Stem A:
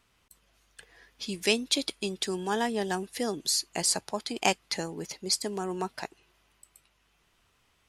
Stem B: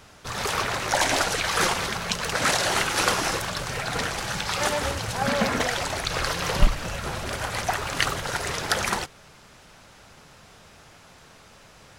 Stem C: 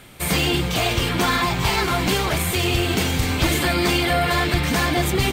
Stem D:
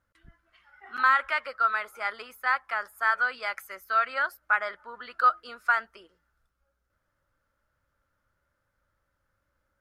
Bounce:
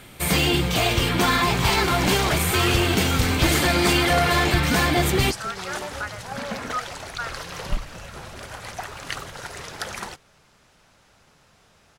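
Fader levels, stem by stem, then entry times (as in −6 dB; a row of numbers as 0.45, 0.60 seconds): −7.0, −7.5, 0.0, −8.0 decibels; 0.00, 1.10, 0.00, 1.50 seconds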